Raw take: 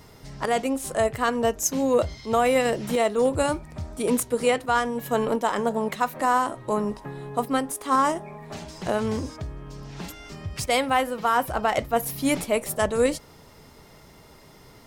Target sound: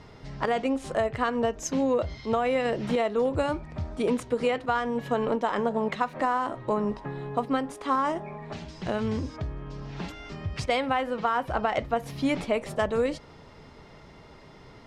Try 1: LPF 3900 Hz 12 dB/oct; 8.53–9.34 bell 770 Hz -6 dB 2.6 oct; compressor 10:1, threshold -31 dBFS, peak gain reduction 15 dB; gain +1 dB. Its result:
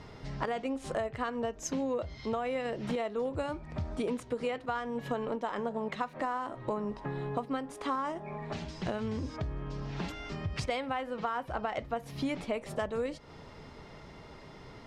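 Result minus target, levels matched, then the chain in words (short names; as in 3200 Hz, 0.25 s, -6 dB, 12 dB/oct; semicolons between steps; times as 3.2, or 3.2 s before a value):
compressor: peak gain reduction +8 dB
LPF 3900 Hz 12 dB/oct; 8.53–9.34 bell 770 Hz -6 dB 2.6 oct; compressor 10:1, threshold -22 dBFS, peak gain reduction 7 dB; gain +1 dB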